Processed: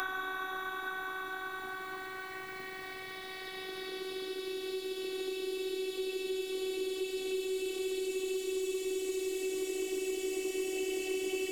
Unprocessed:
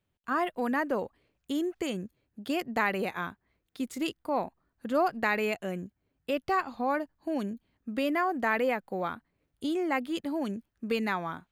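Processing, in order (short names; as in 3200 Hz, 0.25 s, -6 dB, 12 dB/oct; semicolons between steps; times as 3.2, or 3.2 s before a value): Paulstretch 21×, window 0.50 s, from 3.4; robotiser 377 Hz; low shelf 390 Hz -6 dB; in parallel at -10 dB: hard clip -39 dBFS, distortion -10 dB; on the sum: three-band squash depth 100%; gain +5 dB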